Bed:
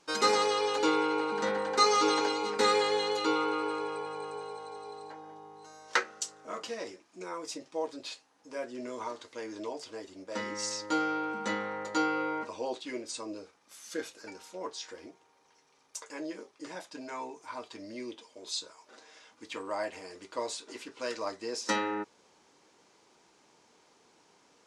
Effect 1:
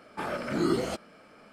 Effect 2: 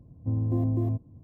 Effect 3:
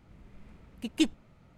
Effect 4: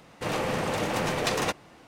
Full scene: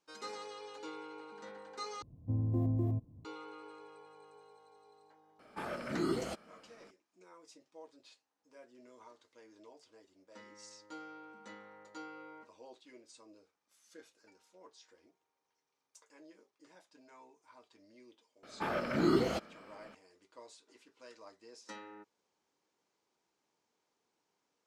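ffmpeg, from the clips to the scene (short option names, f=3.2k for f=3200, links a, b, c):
-filter_complex "[1:a]asplit=2[a][b];[0:a]volume=-19dB[c];[b]equalizer=f=9.1k:t=o:w=0.61:g=-10.5[d];[c]asplit=2[e][f];[e]atrim=end=2.024[g];[2:a]atrim=end=1.23,asetpts=PTS-STARTPTS,volume=-6dB[h];[f]atrim=start=3.246[i];[a]atrim=end=1.52,asetpts=PTS-STARTPTS,volume=-7.5dB,afade=t=in:d=0.004:c=hsin,afade=t=out:st=1.516:d=0.004:c=hsin,adelay=5390[j];[d]atrim=end=1.52,asetpts=PTS-STARTPTS,volume=-2dB,afade=t=in:d=0.004:c=hsin,afade=t=out:st=1.516:d=0.004:c=hsin,adelay=18430[k];[g][h]acrossfade=d=0.004:c1=hsin:c2=hsin[l];[l][i]acrossfade=d=0.004:c1=hsin:c2=hsin[m];[m][j][k]amix=inputs=3:normalize=0"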